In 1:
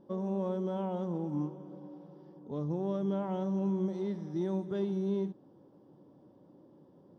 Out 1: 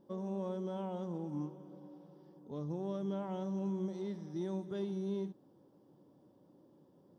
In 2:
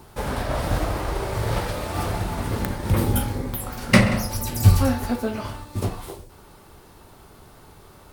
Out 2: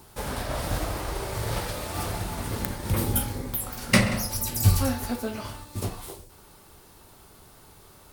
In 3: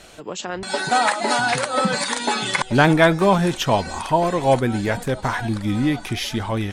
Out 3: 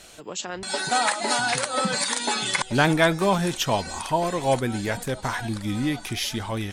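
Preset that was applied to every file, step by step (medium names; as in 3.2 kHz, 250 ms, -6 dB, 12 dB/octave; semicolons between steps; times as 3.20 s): treble shelf 3.5 kHz +8.5 dB; trim -5.5 dB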